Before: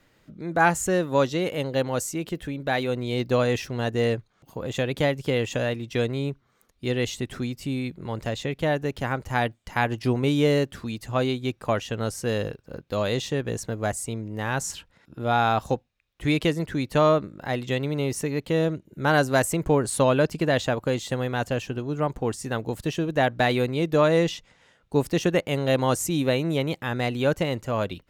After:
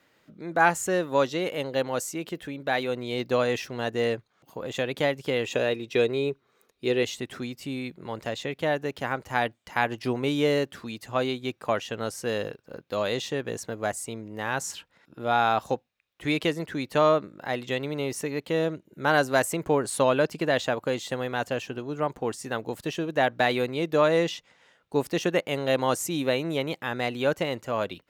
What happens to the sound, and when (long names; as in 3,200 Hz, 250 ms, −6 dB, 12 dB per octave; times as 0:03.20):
0:05.45–0:07.03: hollow resonant body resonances 410/2,500/3,800 Hz, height 9 dB, ringing for 25 ms
whole clip: high-pass filter 330 Hz 6 dB per octave; parametric band 8,700 Hz −3 dB 1.5 octaves